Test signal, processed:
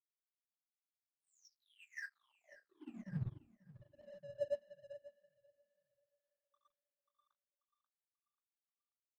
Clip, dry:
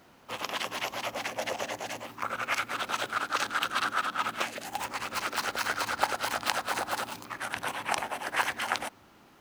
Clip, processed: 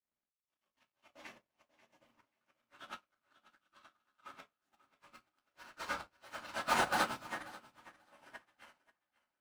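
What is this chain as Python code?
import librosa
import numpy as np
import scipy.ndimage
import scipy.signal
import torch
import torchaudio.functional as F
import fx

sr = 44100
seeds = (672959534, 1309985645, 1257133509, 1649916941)

p1 = fx.phase_scramble(x, sr, seeds[0], window_ms=50)
p2 = fx.chopper(p1, sr, hz=2.6, depth_pct=65, duty_pct=80)
p3 = fx.auto_swell(p2, sr, attack_ms=788.0)
p4 = fx.room_shoebox(p3, sr, seeds[1], volume_m3=340.0, walls='furnished', distance_m=2.6)
p5 = np.sign(p4) * np.maximum(np.abs(p4) - 10.0 ** (-51.5 / 20.0), 0.0)
p6 = fx.high_shelf(p5, sr, hz=8500.0, db=-6.0)
p7 = p6 + fx.echo_feedback(p6, sr, ms=537, feedback_pct=41, wet_db=-8, dry=0)
y = fx.upward_expand(p7, sr, threshold_db=-50.0, expansion=2.5)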